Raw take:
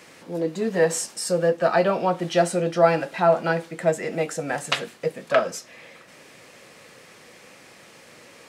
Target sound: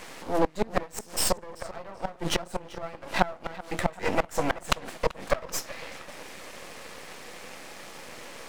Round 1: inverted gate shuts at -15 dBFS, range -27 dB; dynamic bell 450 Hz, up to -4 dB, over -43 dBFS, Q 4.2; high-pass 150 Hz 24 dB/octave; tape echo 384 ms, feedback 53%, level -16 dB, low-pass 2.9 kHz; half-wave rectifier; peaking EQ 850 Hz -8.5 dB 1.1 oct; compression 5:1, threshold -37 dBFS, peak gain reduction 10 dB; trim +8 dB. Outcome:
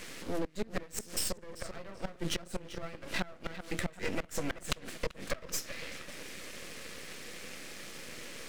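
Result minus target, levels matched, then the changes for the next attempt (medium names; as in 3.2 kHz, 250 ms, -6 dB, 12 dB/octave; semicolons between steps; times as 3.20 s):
compression: peak gain reduction +10 dB; 1 kHz band -5.5 dB
change: peaking EQ 850 Hz +3.5 dB 1.1 oct; remove: compression 5:1, threshold -37 dBFS, peak gain reduction 10 dB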